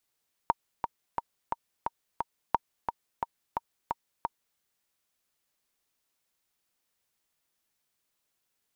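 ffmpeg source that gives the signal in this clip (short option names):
-f lavfi -i "aevalsrc='pow(10,(-9.5-6.5*gte(mod(t,6*60/176),60/176))/20)*sin(2*PI*932*mod(t,60/176))*exp(-6.91*mod(t,60/176)/0.03)':d=4.09:s=44100"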